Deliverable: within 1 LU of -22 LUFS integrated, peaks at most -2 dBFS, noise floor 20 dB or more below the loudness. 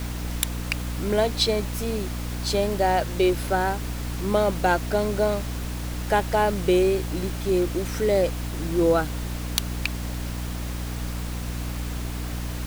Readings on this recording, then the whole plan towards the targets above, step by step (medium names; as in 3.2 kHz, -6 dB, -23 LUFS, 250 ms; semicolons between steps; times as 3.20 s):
hum 60 Hz; highest harmonic 300 Hz; hum level -28 dBFS; noise floor -31 dBFS; noise floor target -46 dBFS; loudness -25.5 LUFS; peak level -1.0 dBFS; loudness target -22.0 LUFS
-> de-hum 60 Hz, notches 5; noise print and reduce 15 dB; trim +3.5 dB; peak limiter -2 dBFS